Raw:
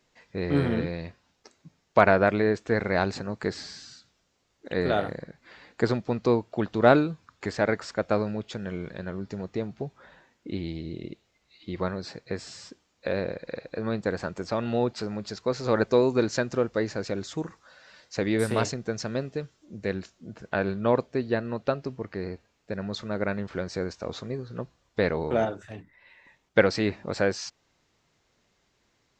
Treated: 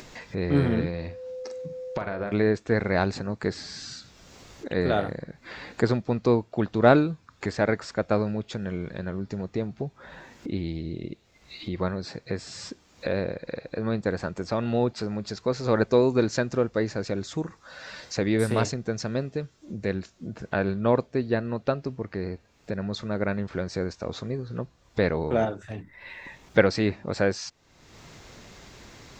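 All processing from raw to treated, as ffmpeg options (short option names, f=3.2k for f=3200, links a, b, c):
-filter_complex "[0:a]asettb=1/sr,asplit=3[a][b][c];[a]atrim=end=0.894[d];[b]atrim=start=0.89:end=2.32,asetpts=PTS-STARTPTS,afade=t=in:d=0.004:c=qsin,afade=t=out:st=1.426:d=0.004:c=qsin,acompressor=threshold=-28dB:ratio=6:attack=3.2:release=140:knee=1:detection=peak,aeval=exprs='val(0)+0.00631*sin(2*PI*510*n/s)':c=same,asplit=2[e][f];[f]adelay=45,volume=-9dB[g];[e][g]amix=inputs=2:normalize=0,atrim=end_sample=63063[h];[c]atrim=start=2.316[i];[d][h]acrossfade=d=0.004:c1=hsin:c2=qsin[j];[j][i]acrossfade=d=0.004:c1=qsin:c2=hsin,lowshelf=f=220:g=4.5,bandreject=f=3k:w=29,acompressor=mode=upward:threshold=-29dB:ratio=2.5"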